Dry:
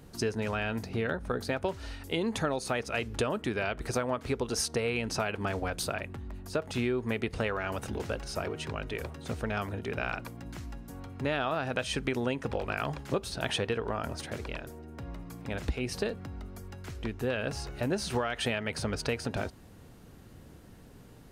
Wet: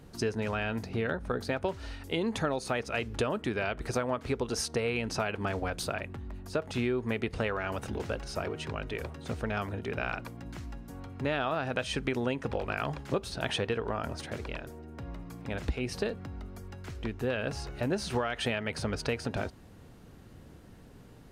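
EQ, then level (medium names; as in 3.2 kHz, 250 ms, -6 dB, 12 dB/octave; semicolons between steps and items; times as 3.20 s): treble shelf 7.4 kHz -6 dB; 0.0 dB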